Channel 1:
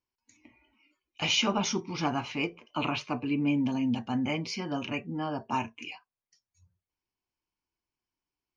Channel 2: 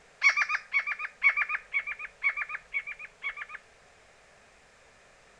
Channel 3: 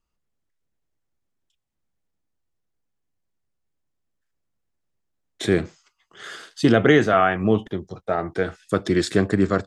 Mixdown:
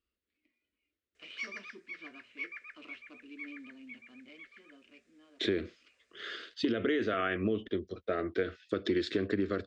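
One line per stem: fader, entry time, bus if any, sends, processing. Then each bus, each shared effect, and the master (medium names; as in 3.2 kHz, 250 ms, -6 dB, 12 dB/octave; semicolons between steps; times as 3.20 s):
-14.5 dB, 0.00 s, bus A, no send, dead-time distortion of 0.097 ms; bass shelf 360 Hz -9 dB; hum notches 60/120/180/240 Hz; auto duck -7 dB, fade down 1.80 s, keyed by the third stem
-15.5 dB, 1.15 s, no bus, no send, none
-2.0 dB, 0.00 s, bus A, no send, treble shelf 5.6 kHz +8 dB
bus A: 0.0 dB, low-pass 3.9 kHz 24 dB/octave; peak limiter -12 dBFS, peak gain reduction 7 dB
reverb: none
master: high-pass 62 Hz; static phaser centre 350 Hz, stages 4; compression 10:1, threshold -26 dBFS, peak gain reduction 8 dB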